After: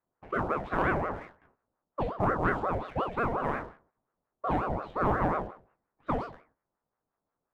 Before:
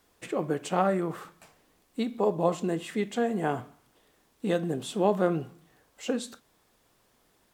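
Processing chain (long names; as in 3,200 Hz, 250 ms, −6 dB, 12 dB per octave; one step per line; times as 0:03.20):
peak hold with a decay on every bin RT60 0.52 s
low-pass that shuts in the quiet parts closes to 830 Hz, open at −20.5 dBFS
noise gate −59 dBFS, range −10 dB
low-pass filter 1,500 Hz 12 dB per octave
leveller curve on the samples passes 1
ring modulator whose carrier an LFO sweeps 580 Hz, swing 65%, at 5.6 Hz
level −3 dB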